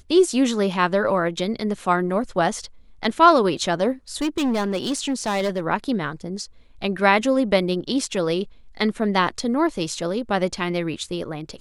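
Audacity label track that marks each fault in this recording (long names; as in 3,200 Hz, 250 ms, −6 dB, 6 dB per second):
4.210000	5.600000	clipping −18.5 dBFS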